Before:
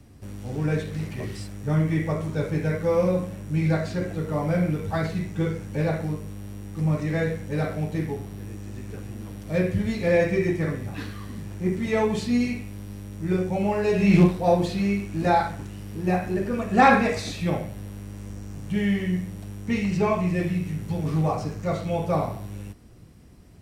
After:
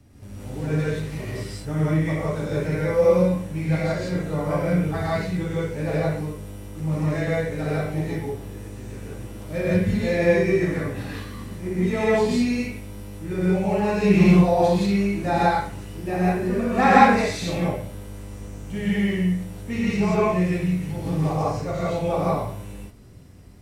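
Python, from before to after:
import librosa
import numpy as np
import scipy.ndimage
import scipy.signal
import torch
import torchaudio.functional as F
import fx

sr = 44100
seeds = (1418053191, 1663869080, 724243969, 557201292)

y = fx.rev_gated(x, sr, seeds[0], gate_ms=200, shape='rising', drr_db=-6.5)
y = F.gain(torch.from_numpy(y), -4.5).numpy()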